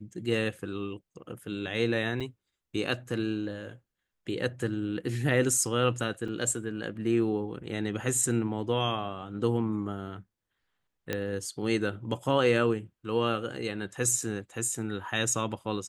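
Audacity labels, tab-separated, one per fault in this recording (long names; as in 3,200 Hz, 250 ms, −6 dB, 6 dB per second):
2.200000	2.210000	drop-out 6.2 ms
6.280000	6.280000	drop-out 3.9 ms
11.130000	11.130000	click −15 dBFS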